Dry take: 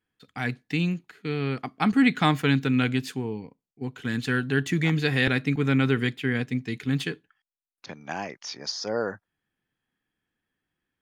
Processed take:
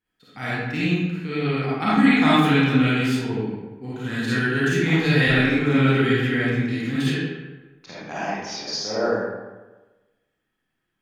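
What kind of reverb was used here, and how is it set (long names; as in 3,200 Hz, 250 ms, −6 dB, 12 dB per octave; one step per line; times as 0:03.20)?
comb and all-pass reverb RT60 1.2 s, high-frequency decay 0.65×, pre-delay 10 ms, DRR −10 dB
level −4.5 dB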